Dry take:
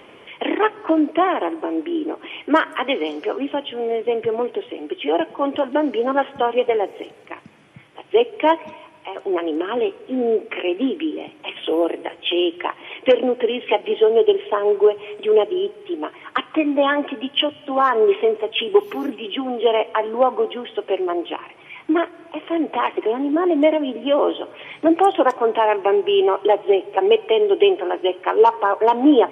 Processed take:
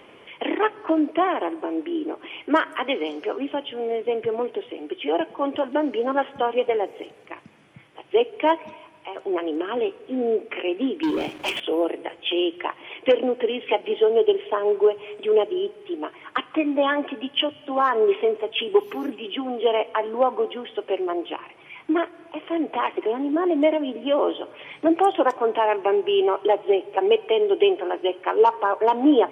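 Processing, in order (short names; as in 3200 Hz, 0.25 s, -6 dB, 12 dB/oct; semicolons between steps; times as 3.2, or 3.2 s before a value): 11.03–11.6 sample leveller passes 3; gain -3.5 dB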